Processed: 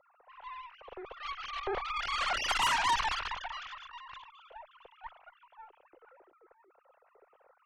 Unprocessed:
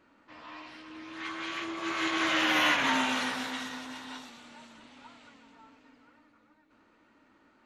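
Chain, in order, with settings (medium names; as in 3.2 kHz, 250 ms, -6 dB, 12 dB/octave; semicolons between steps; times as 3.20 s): formants replaced by sine waves; ten-band graphic EQ 250 Hz -6 dB, 500 Hz +7 dB, 2 kHz -11 dB; Chebyshev shaper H 8 -15 dB, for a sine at -18 dBFS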